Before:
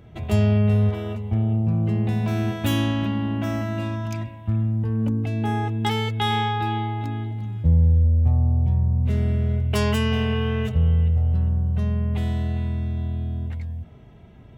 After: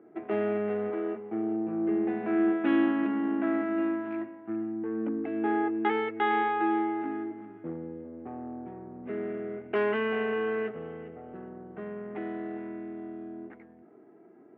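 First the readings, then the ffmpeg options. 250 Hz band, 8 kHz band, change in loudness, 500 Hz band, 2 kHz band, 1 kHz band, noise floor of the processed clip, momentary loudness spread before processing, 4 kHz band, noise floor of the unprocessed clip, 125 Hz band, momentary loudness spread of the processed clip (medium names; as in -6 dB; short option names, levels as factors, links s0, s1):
-3.0 dB, no reading, -7.5 dB, +0.5 dB, -2.0 dB, -2.5 dB, -54 dBFS, 10 LU, -16.5 dB, -45 dBFS, -30.0 dB, 15 LU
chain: -af "adynamicsmooth=sensitivity=6.5:basefreq=1100,asoftclip=type=hard:threshold=0.316,highpass=f=310:w=0.5412,highpass=f=310:w=1.3066,equalizer=f=330:t=q:w=4:g=8,equalizer=f=560:t=q:w=4:g=-9,equalizer=f=970:t=q:w=4:g=-8,lowpass=f=2000:w=0.5412,lowpass=f=2000:w=1.3066,volume=1.19"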